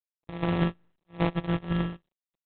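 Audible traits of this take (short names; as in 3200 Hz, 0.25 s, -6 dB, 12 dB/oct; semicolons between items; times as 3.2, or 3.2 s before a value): a buzz of ramps at a fixed pitch in blocks of 256 samples; phasing stages 6, 0.93 Hz, lowest notch 700–2700 Hz; aliases and images of a low sample rate 1500 Hz, jitter 0%; G.726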